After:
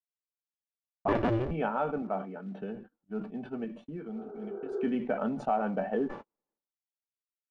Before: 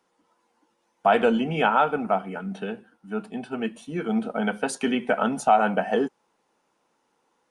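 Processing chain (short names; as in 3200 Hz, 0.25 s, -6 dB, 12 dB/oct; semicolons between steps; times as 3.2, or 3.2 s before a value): 1.08–1.51 cycle switcher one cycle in 2, inverted; resonator 580 Hz, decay 0.17 s, harmonics all, mix 70%; 3.64–4.72 compressor 5:1, threshold -41 dBFS, peak gain reduction 10.5 dB; bell 340 Hz +3.5 dB 1.2 oct; gate -49 dBFS, range -52 dB; tilt -2.5 dB/oct; short-mantissa float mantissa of 4-bit; 2.02–2.62 HPF 180 Hz; 4.16–4.81 spectral repair 340–1600 Hz both; LPF 2700 Hz 12 dB/oct; sustainer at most 110 dB/s; gain -3 dB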